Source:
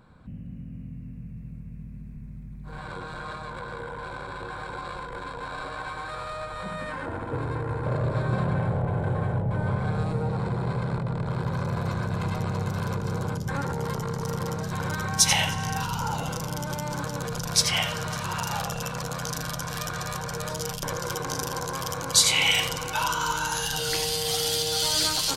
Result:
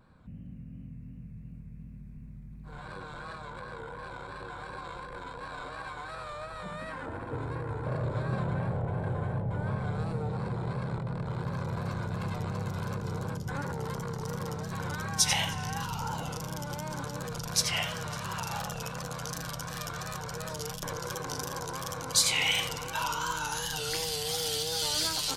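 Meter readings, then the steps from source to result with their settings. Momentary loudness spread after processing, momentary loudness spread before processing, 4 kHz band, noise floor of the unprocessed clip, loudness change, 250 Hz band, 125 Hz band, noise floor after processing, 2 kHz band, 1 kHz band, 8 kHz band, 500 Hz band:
18 LU, 18 LU, −5.5 dB, −39 dBFS, −5.5 dB, −5.5 dB, −5.5 dB, −45 dBFS, −5.5 dB, −5.5 dB, −5.5 dB, −5.5 dB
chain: pitch vibrato 2.8 Hz 72 cents
level −5.5 dB

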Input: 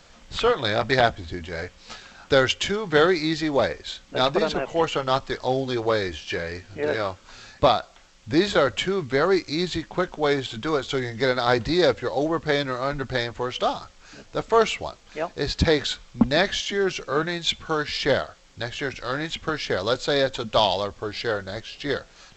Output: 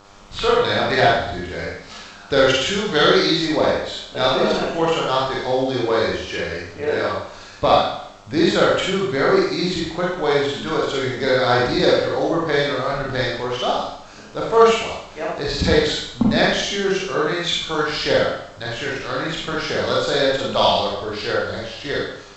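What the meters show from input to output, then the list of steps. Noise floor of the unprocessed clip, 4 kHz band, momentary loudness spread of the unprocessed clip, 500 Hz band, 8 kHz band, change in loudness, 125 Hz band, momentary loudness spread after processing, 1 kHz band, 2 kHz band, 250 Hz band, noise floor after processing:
−52 dBFS, +5.0 dB, 11 LU, +4.5 dB, can't be measured, +4.5 dB, +3.5 dB, 11 LU, +4.5 dB, +4.5 dB, +4.0 dB, −40 dBFS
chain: gain on a spectral selection 0:02.71–0:03.32, 2,700–6,500 Hz +7 dB
four-comb reverb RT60 0.72 s, combs from 33 ms, DRR −4.5 dB
hum with harmonics 100 Hz, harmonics 14, −48 dBFS 0 dB per octave
level −1.5 dB

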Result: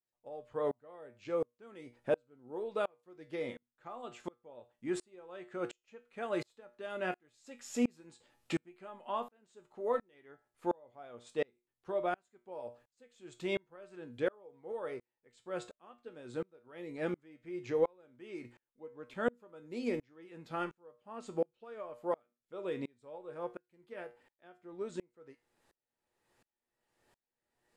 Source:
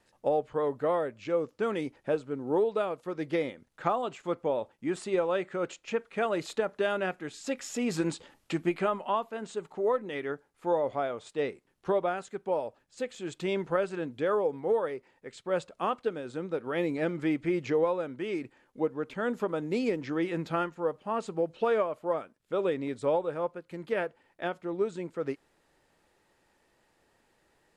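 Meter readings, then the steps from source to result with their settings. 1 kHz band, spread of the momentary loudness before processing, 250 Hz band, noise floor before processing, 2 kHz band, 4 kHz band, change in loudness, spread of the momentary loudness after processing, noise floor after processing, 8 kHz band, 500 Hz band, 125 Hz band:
−10.0 dB, 8 LU, −8.5 dB, −70 dBFS, −8.0 dB, −8.5 dB, −8.0 dB, 18 LU, below −85 dBFS, −8.5 dB, −9.0 dB, −10.5 dB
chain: high-shelf EQ 7,600 Hz +4 dB
tuned comb filter 120 Hz, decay 0.26 s, harmonics all, mix 70%
tremolo with a ramp in dB swelling 1.4 Hz, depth 34 dB
level +5.5 dB

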